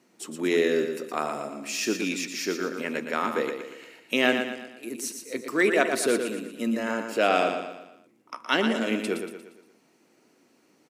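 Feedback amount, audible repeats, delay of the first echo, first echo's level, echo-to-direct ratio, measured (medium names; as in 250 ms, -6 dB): 45%, 5, 117 ms, -7.0 dB, -6.0 dB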